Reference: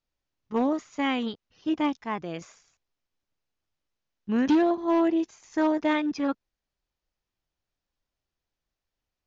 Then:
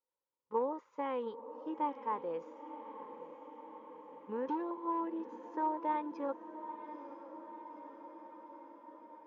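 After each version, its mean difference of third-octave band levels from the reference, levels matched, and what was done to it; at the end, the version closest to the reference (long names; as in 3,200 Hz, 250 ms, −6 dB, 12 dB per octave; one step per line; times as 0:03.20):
6.5 dB: downward compressor, threshold −25 dBFS, peak gain reduction 6.5 dB
pair of resonant band-passes 690 Hz, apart 0.85 octaves
feedback delay with all-pass diffusion 931 ms, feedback 69%, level −12 dB
level +3.5 dB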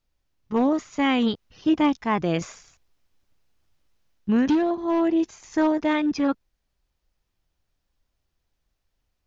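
2.0 dB: low-shelf EQ 120 Hz +8.5 dB
in parallel at −2 dB: brickwall limiter −24.5 dBFS, peak gain reduction 10 dB
on the sum: speech leveller 0.5 s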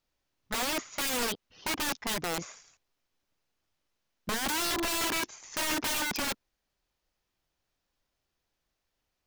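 17.0 dB: low-shelf EQ 180 Hz −4.5 dB
in parallel at −0.5 dB: brickwall limiter −23 dBFS, peak gain reduction 7 dB
on the sum: wrap-around overflow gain 25.5 dB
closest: second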